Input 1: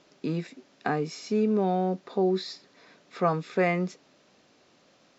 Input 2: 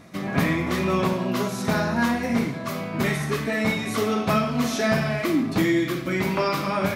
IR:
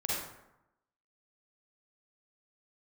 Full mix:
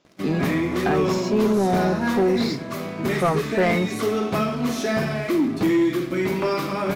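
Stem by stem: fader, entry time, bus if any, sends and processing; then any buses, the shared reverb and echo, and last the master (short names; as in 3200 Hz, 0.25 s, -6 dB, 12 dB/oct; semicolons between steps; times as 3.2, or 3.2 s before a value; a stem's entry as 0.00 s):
-1.5 dB, 0.00 s, no send, dry
-9.5 dB, 0.05 s, no send, bell 360 Hz +7 dB 0.77 oct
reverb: off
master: sample leveller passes 2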